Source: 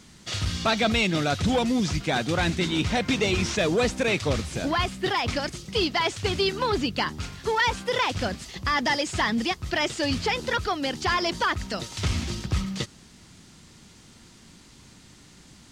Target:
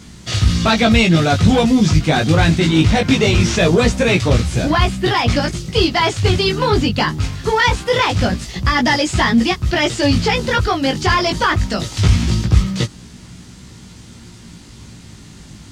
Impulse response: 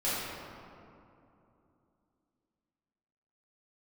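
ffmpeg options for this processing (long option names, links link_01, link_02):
-filter_complex "[0:a]equalizer=frequency=91:width_type=o:width=2.5:gain=8,asplit=2[link_01][link_02];[link_02]asoftclip=type=tanh:threshold=-16dB,volume=-3dB[link_03];[link_01][link_03]amix=inputs=2:normalize=0,flanger=delay=16.5:depth=2.6:speed=0.22,volume=7dB"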